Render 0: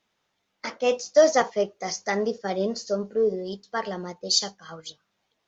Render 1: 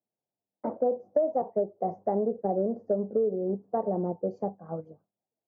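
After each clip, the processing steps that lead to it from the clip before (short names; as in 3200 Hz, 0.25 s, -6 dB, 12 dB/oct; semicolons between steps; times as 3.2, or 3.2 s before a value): gate with hold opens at -47 dBFS; elliptic band-pass 100–740 Hz, stop band 60 dB; compressor 6:1, threshold -32 dBFS, peak gain reduction 18.5 dB; gain +8 dB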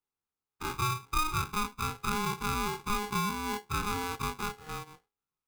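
spectral dilation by 60 ms; polarity switched at an audio rate 620 Hz; gain -7 dB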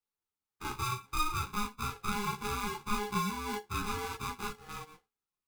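ensemble effect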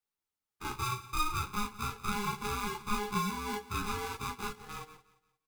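feedback echo 0.175 s, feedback 36%, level -18 dB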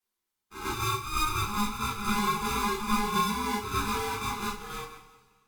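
reverse echo 99 ms -9 dB; two-slope reverb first 0.23 s, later 1.8 s, from -21 dB, DRR -4 dB; Opus 128 kbps 48000 Hz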